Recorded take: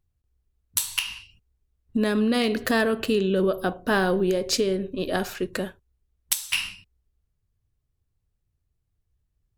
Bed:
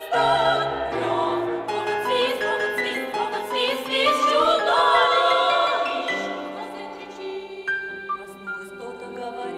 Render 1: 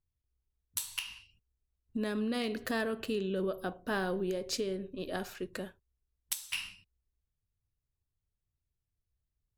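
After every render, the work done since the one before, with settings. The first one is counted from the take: gain -11 dB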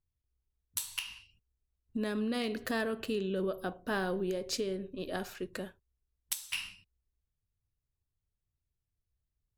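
nothing audible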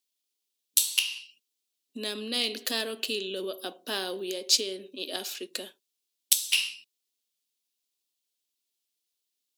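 steep high-pass 240 Hz 36 dB/oct; resonant high shelf 2300 Hz +12.5 dB, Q 1.5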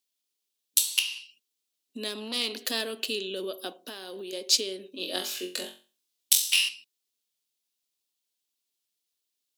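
2.08–2.61 core saturation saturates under 2400 Hz; 3.73–4.33 compressor 12:1, threshold -35 dBFS; 4.91–6.69 flutter echo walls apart 3.8 m, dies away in 0.35 s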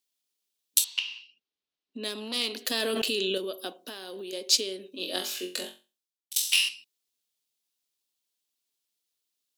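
0.84–2.04 air absorption 200 m; 2.71–3.38 fast leveller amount 100%; 5.67–6.36 fade out quadratic, to -22 dB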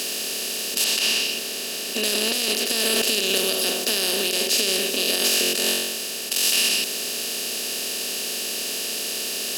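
per-bin compression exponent 0.2; limiter -9.5 dBFS, peak gain reduction 11 dB

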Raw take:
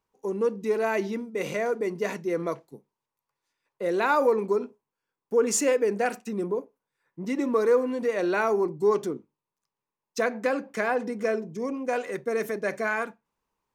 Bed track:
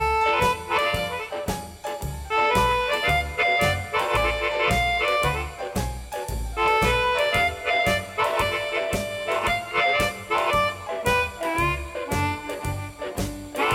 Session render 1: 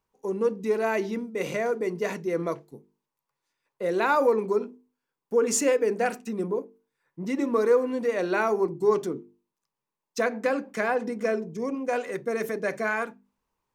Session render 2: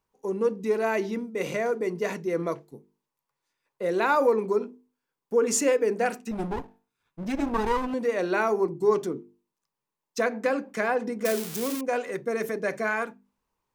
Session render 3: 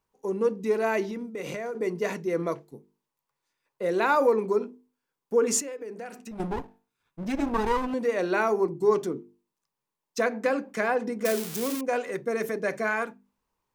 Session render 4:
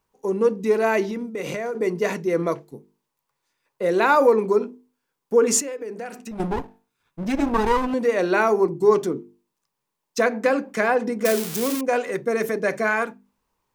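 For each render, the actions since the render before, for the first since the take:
low shelf 200 Hz +4 dB; notches 50/100/150/200/250/300/350/400/450 Hz
6.31–7.94 minimum comb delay 0.79 ms; 11.25–11.81 switching spikes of -19.5 dBFS
1.03–1.75 compressor, threshold -30 dBFS; 5.6–6.4 compressor 3:1, threshold -39 dBFS
gain +5.5 dB

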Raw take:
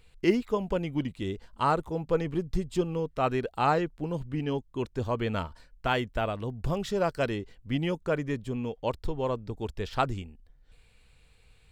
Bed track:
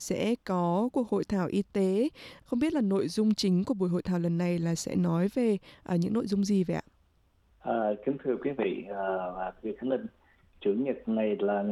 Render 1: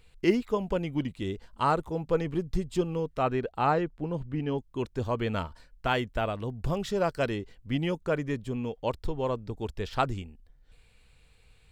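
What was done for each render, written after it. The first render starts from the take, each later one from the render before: 3.23–4.58 high shelf 4300 Hz -11 dB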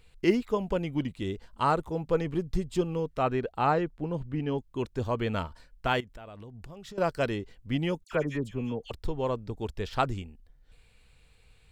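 6–6.98 compressor 12:1, threshold -41 dBFS; 8.04–8.91 dispersion lows, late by 74 ms, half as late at 1900 Hz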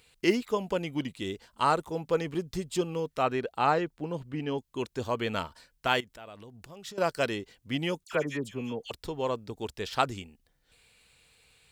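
HPF 210 Hz 6 dB/oct; high shelf 2900 Hz +8 dB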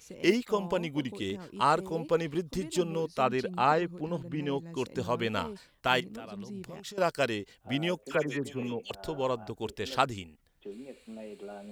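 add bed track -15.5 dB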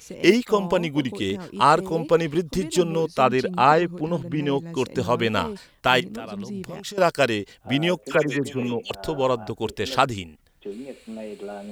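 gain +8.5 dB; limiter -3 dBFS, peak gain reduction 2.5 dB

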